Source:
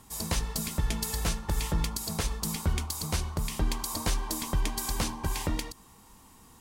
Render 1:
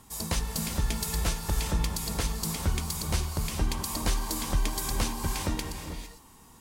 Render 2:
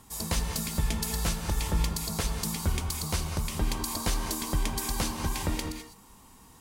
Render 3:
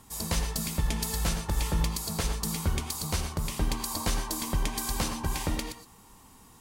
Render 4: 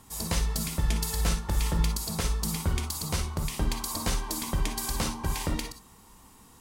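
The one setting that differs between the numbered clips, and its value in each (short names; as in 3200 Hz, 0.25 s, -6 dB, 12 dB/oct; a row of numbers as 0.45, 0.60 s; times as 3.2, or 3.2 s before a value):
non-linear reverb, gate: 480, 230, 140, 80 ms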